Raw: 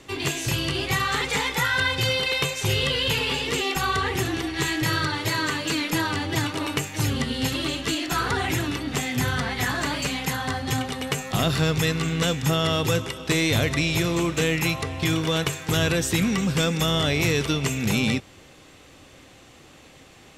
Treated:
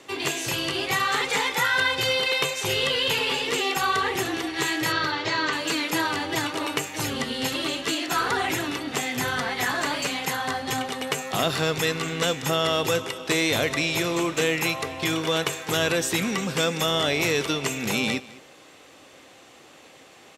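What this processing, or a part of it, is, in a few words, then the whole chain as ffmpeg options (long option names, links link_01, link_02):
filter by subtraction: -filter_complex "[0:a]asettb=1/sr,asplit=3[link_01][link_02][link_03];[link_01]atrim=end=4.924[link_04];[link_02]atrim=start=4.92:end=5.53,asetpts=PTS-STARTPTS,afade=type=in:duration=0.004:curve=qsin,afade=type=out:start_time=0.606:duration=0.004:curve=qsin,lowpass=frequency=5800:width=0.5412,lowpass=frequency=5800:width=1.3066[link_05];[link_03]atrim=start=5.526[link_06];[link_04][link_05]acrossfade=duration=0.004:curve1=hsin:curve2=qsin[link_07];[link_07][link_06]acrossfade=duration=0.004:curve1=qsin:curve2=hsin,asplit=2[link_08][link_09];[link_09]lowpass=560,volume=-1[link_10];[link_08][link_10]amix=inputs=2:normalize=0,aecho=1:1:207:0.0944"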